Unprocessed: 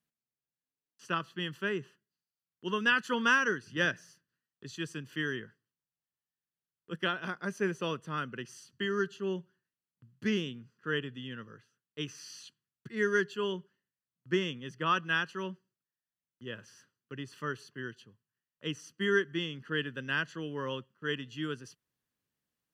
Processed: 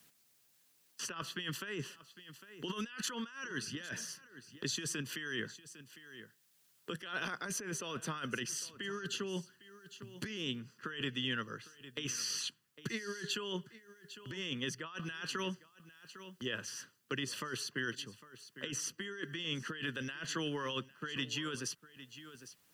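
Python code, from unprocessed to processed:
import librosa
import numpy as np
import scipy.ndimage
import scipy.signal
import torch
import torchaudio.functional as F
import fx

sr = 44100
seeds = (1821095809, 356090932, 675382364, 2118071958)

p1 = fx.high_shelf(x, sr, hz=2400.0, db=8.0)
p2 = fx.hpss(p1, sr, part='percussive', gain_db=5)
p3 = fx.low_shelf(p2, sr, hz=72.0, db=-6.5)
p4 = fx.over_compress(p3, sr, threshold_db=-37.0, ratio=-1.0)
p5 = p4 + fx.echo_single(p4, sr, ms=804, db=-19.5, dry=0)
p6 = fx.band_squash(p5, sr, depth_pct=40)
y = p6 * librosa.db_to_amplitude(-3.5)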